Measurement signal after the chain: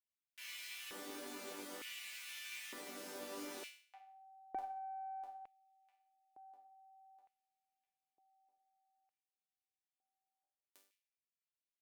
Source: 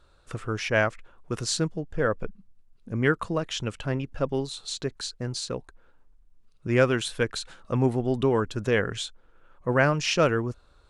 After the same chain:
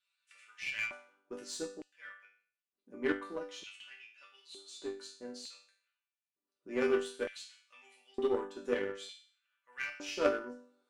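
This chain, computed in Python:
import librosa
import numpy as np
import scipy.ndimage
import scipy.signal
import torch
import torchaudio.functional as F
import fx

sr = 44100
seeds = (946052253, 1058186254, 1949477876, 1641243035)

p1 = fx.resonator_bank(x, sr, root=55, chord='major', decay_s=0.49)
p2 = fx.filter_lfo_highpass(p1, sr, shape='square', hz=0.55, low_hz=340.0, high_hz=2400.0, q=2.9)
p3 = np.clip(p2, -10.0 ** (-37.5 / 20.0), 10.0 ** (-37.5 / 20.0))
p4 = p2 + F.gain(torch.from_numpy(p3), -7.5).numpy()
p5 = fx.cheby_harmonics(p4, sr, harmonics=(3, 6), levels_db=(-12, -40), full_scale_db=-23.0)
y = F.gain(torch.from_numpy(p5), 12.5).numpy()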